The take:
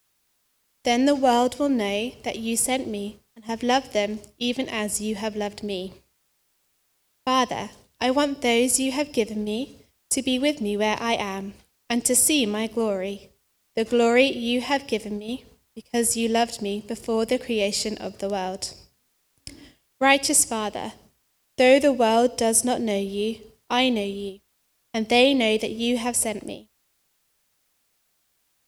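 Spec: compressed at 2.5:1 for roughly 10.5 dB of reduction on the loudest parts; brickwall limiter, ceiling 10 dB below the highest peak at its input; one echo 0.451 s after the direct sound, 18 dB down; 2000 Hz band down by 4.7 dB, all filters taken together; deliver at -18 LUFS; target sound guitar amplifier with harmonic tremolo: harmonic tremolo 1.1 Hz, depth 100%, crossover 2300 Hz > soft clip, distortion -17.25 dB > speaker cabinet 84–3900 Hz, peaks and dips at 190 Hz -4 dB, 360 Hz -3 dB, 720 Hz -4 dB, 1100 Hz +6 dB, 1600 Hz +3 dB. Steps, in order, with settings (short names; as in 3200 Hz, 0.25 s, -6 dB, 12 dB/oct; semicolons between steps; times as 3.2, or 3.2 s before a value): bell 2000 Hz -7 dB; compressor 2.5:1, threshold -29 dBFS; limiter -22 dBFS; echo 0.451 s -18 dB; harmonic tremolo 1.1 Hz, depth 100%, crossover 2300 Hz; soft clip -26.5 dBFS; speaker cabinet 84–3900 Hz, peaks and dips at 190 Hz -4 dB, 360 Hz -3 dB, 720 Hz -4 dB, 1100 Hz +6 dB, 1600 Hz +3 dB; gain +22 dB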